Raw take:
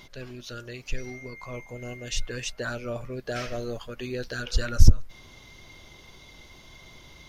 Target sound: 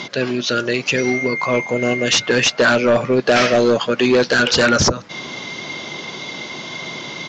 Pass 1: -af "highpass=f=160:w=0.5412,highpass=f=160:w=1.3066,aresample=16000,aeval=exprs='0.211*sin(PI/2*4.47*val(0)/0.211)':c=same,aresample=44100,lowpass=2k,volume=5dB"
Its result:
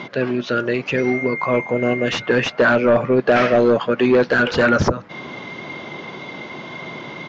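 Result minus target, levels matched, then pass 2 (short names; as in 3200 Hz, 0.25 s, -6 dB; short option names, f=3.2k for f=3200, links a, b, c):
8000 Hz band -15.5 dB
-af "highpass=f=160:w=0.5412,highpass=f=160:w=1.3066,aresample=16000,aeval=exprs='0.211*sin(PI/2*4.47*val(0)/0.211)':c=same,aresample=44100,lowpass=5.8k,volume=5dB"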